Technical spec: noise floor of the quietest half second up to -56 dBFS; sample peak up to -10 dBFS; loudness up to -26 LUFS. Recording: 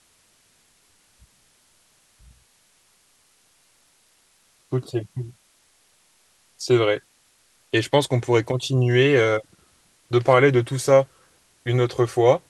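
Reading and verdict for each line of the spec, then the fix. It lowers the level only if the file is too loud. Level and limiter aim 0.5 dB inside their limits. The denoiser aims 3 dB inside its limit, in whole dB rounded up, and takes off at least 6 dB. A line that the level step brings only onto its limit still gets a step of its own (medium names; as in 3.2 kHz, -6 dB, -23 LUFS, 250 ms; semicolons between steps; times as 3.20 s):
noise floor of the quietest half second -61 dBFS: pass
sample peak -3.5 dBFS: fail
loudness -20.5 LUFS: fail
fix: trim -6 dB; peak limiter -10.5 dBFS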